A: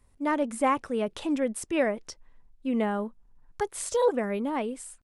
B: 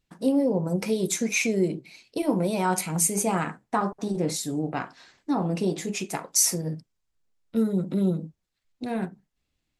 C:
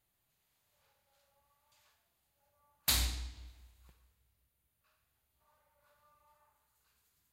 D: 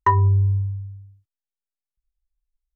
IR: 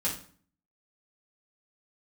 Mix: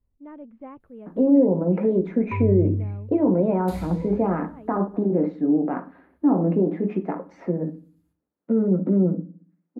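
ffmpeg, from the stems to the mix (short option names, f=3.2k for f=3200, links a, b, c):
-filter_complex "[0:a]lowpass=f=2.9k:w=0.5412,lowpass=f=2.9k:w=1.3066,volume=-18.5dB[a];[1:a]lowpass=f=1.9k:w=0.5412,lowpass=f=1.9k:w=1.3066,alimiter=limit=-19.5dB:level=0:latency=1:release=25,highpass=f=230:w=0.5412,highpass=f=230:w=1.3066,adelay=950,volume=2.5dB,asplit=2[b][c];[c]volume=-15.5dB[d];[2:a]highshelf=f=7.6k:g=-8.5,alimiter=level_in=4.5dB:limit=-24dB:level=0:latency=1:release=332,volume=-4.5dB,equalizer=f=11k:t=o:w=0.36:g=10,adelay=800,volume=-3dB,asplit=2[e][f];[f]volume=-7.5dB[g];[3:a]adelay=2250,volume=-14dB[h];[4:a]atrim=start_sample=2205[i];[d][g]amix=inputs=2:normalize=0[j];[j][i]afir=irnorm=-1:irlink=0[k];[a][b][e][h][k]amix=inputs=5:normalize=0,tiltshelf=f=750:g=9"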